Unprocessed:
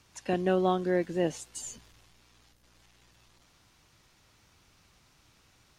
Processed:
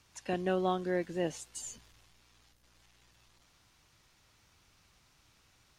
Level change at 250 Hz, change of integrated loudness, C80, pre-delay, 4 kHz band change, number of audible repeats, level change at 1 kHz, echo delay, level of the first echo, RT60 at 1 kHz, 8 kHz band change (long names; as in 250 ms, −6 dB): −5.5 dB, −4.5 dB, no reverb audible, no reverb audible, −2.5 dB, no echo audible, −4.0 dB, no echo audible, no echo audible, no reverb audible, −2.5 dB